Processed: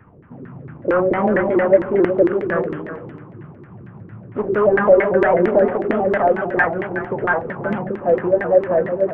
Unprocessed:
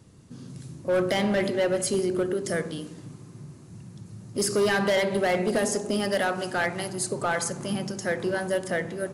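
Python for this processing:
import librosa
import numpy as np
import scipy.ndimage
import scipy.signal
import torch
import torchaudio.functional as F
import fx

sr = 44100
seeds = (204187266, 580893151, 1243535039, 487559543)

y = fx.cvsd(x, sr, bps=16000)
y = fx.filter_lfo_lowpass(y, sr, shape='saw_down', hz=4.4, low_hz=340.0, high_hz=1900.0, q=4.5)
y = y + 10.0 ** (-11.0 / 20.0) * np.pad(y, (int(367 * sr / 1000.0), 0))[:len(y)]
y = fx.vibrato_shape(y, sr, shape='saw_up', rate_hz=4.5, depth_cents=100.0)
y = F.gain(torch.from_numpy(y), 4.5).numpy()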